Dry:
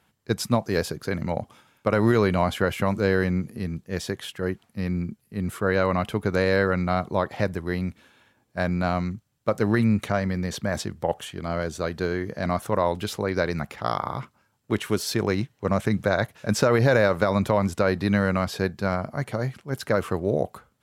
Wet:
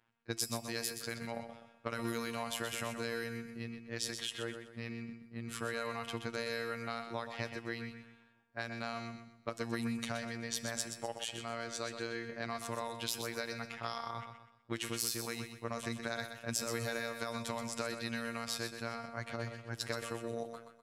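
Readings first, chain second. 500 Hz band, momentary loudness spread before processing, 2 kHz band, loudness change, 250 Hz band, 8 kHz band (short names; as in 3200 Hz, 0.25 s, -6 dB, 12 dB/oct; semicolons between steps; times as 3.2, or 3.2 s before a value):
-17.0 dB, 10 LU, -11.5 dB, -14.0 dB, -16.5 dB, -2.0 dB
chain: pre-emphasis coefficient 0.9; low-pass opened by the level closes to 1500 Hz, open at -33 dBFS; compressor, threshold -41 dBFS, peak gain reduction 13 dB; robotiser 116 Hz; resonator 170 Hz, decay 1 s, harmonics all, mix 60%; on a send: feedback echo 0.125 s, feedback 36%, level -8 dB; on the sum: gain +16 dB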